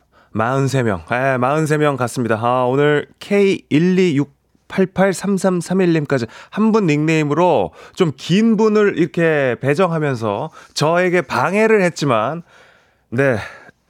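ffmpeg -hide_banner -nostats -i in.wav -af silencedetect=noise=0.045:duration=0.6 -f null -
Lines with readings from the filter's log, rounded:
silence_start: 12.40
silence_end: 13.13 | silence_duration: 0.73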